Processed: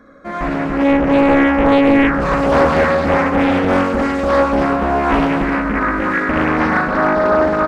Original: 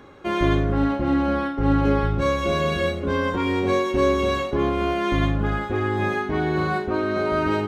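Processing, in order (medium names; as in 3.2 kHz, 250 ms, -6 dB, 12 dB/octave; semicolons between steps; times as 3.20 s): treble shelf 4.8 kHz -11 dB; de-hum 51.54 Hz, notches 29; in parallel at -2.5 dB: peak limiter -16.5 dBFS, peak gain reduction 7 dB; on the sum: level rider gain up to 8.5 dB; static phaser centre 570 Hz, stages 8; loudspeakers at several distances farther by 22 m -3 dB, 100 m -2 dB; loudspeaker Doppler distortion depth 0.93 ms; trim -1 dB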